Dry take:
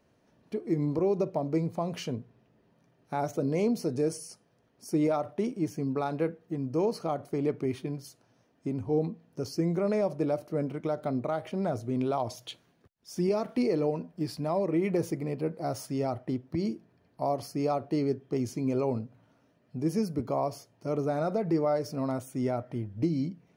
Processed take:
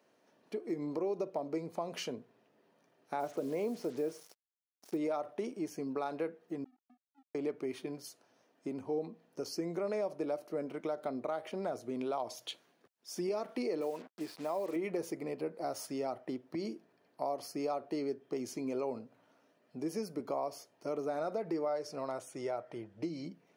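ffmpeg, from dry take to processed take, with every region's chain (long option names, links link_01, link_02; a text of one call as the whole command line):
ffmpeg -i in.wav -filter_complex "[0:a]asettb=1/sr,asplit=3[link_01][link_02][link_03];[link_01]atrim=end=3.204[link_04];[link_02]atrim=start=3.2:end=4.97,asetpts=PTS-STARTPTS,afade=type=in:duration=0.004:curve=qsin,afade=type=out:start_time=1.766:duration=0.004:curve=qsin,aemphasis=mode=reproduction:type=75fm,acrusher=bits=7:mix=0:aa=0.5[link_05];[link_03]atrim=start=4.966[link_06];[link_04][link_05]acrossfade=duration=0.004:curve1=hsin:curve2=qsin[link_07];[link_07][link_06]acrossfade=duration=0.004:curve1=qsin:curve2=hsin,asettb=1/sr,asplit=3[link_08][link_09][link_10];[link_08]atrim=end=6.644[link_11];[link_09]atrim=start=6.64:end=7.35,asetpts=PTS-STARTPTS,afade=type=in:duration=0.004:curve=qsin,afade=type=out:start_time=0.706:duration=0.004:curve=qsin,asuperpass=centerf=260:order=8:qfactor=7.5,aeval=exprs='sgn(val(0))*max(abs(val(0))-0.00251,0)':channel_layout=same,acompressor=threshold=-54dB:ratio=16:attack=3.2:release=140:knee=1:detection=peak[link_12];[link_10]atrim=start=7.346[link_13];[link_11][link_12]acrossfade=duration=0.004:curve1=hsin:curve2=qsin[link_14];[link_14][link_13]acrossfade=duration=0.004:curve1=qsin:curve2=hsin,asettb=1/sr,asplit=3[link_15][link_16][link_17];[link_15]atrim=end=13.814[link_18];[link_16]atrim=start=13.81:end=14.76,asetpts=PTS-STARTPTS,afade=type=in:duration=0.004:curve=qsin,afade=type=out:start_time=0.946:duration=0.004:curve=qsin,acrossover=split=3600[link_19][link_20];[link_20]acompressor=threshold=-58dB:ratio=4:attack=1:release=60[link_21];[link_19][link_21]amix=inputs=2:normalize=0,highpass=frequency=280:poles=1,acrusher=bits=7:mix=0:aa=0.5[link_22];[link_17]atrim=start=14.756[link_23];[link_18][link_22]acrossfade=duration=0.004:curve1=hsin:curve2=qsin[link_24];[link_24][link_23]acrossfade=duration=0.004:curve1=qsin:curve2=hsin,asettb=1/sr,asplit=3[link_25][link_26][link_27];[link_25]atrim=end=21.684[link_28];[link_26]atrim=start=21.68:end=23.26,asetpts=PTS-STARTPTS,afade=type=in:duration=0.004:curve=qsin,afade=type=out:start_time=1.576:duration=0.004:curve=qsin,lowpass=9800,equalizer=frequency=250:width=5.2:gain=-12[link_29];[link_27]atrim=start=23.256[link_30];[link_28][link_29]acrossfade=duration=0.004:curve1=hsin:curve2=qsin[link_31];[link_31][link_30]acrossfade=duration=0.004:curve1=qsin:curve2=hsin,highpass=330,acompressor=threshold=-36dB:ratio=2" out.wav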